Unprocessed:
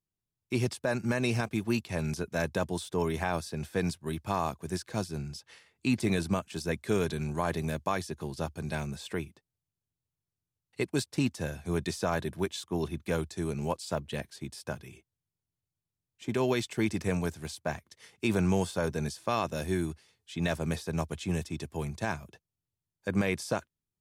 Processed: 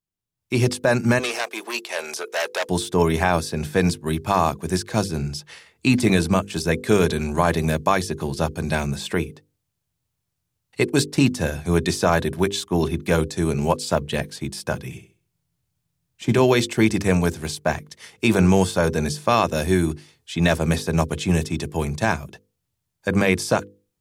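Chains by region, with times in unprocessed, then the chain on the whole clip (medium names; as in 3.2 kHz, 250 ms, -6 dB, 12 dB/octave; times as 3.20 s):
1.19–2.69 s: high-pass 440 Hz 24 dB/octave + transformer saturation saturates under 2.9 kHz
14.84–16.39 s: peaking EQ 150 Hz +6.5 dB 1 oct + flutter echo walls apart 11.3 m, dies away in 0.39 s
whole clip: hum notches 50/100/150/200/250/300/350/400/450/500 Hz; level rider gain up to 12 dB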